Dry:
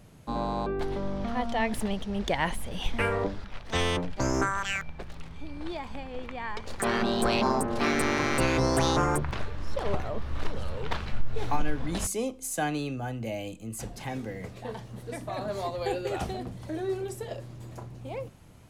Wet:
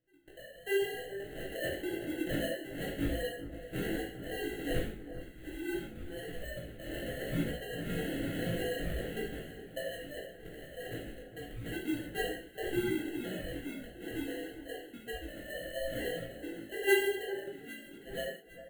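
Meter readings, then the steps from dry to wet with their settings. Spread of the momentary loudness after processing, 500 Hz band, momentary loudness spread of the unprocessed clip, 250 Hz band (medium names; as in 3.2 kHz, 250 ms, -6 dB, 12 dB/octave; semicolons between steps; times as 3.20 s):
11 LU, -4.5 dB, 14 LU, -6.0 dB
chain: formants replaced by sine waves; spectral noise reduction 16 dB; Chebyshev band-stop 380–2200 Hz, order 2; bass shelf 470 Hz -7.5 dB; in parallel at +2 dB: compression, threshold -42 dBFS, peak gain reduction 23.5 dB; on the sum: sample-and-hold 37×; chorus 0.93 Hz, delay 16 ms, depth 6.5 ms; static phaser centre 2.3 kHz, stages 4; doubling 18 ms -11.5 dB; on a send: echo whose repeats swap between lows and highs 403 ms, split 1.5 kHz, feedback 56%, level -11.5 dB; on the sum: gated-style reverb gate 210 ms falling, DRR -3.5 dB; trim -3.5 dB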